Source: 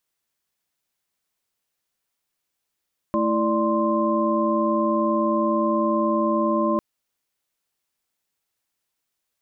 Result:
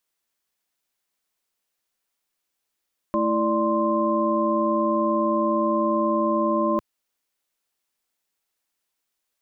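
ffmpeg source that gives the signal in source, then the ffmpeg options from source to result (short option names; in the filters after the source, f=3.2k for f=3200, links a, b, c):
-f lavfi -i "aevalsrc='0.0631*(sin(2*PI*220*t)+sin(2*PI*329.63*t)+sin(2*PI*587.33*t)+sin(2*PI*1046.5*t))':d=3.65:s=44100"
-af "equalizer=f=110:t=o:w=0.96:g=-9.5"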